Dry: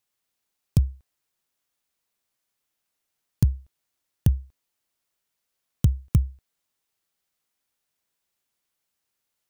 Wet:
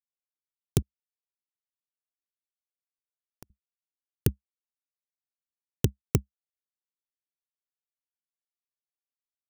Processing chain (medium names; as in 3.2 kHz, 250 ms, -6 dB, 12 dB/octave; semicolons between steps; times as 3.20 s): 0.82–3.50 s: compression 8:1, threshold -30 dBFS, peak gain reduction 15.5 dB; power-law waveshaper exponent 3; trim +3 dB